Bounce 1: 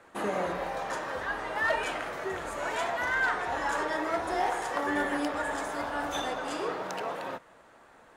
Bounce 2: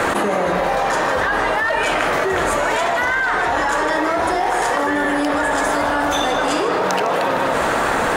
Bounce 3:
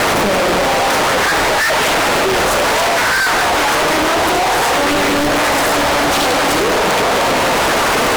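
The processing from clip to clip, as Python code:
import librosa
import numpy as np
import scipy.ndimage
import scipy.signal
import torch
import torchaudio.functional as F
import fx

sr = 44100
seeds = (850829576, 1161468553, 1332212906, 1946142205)

y1 = x + 10.0 ** (-12.0 / 20.0) * np.pad(x, (int(155 * sr / 1000.0), 0))[:len(x)]
y1 = fx.env_flatten(y1, sr, amount_pct=100)
y1 = F.gain(torch.from_numpy(y1), 6.0).numpy()
y2 = fx.fuzz(y1, sr, gain_db=39.0, gate_db=-43.0)
y2 = fx.doppler_dist(y2, sr, depth_ms=0.79)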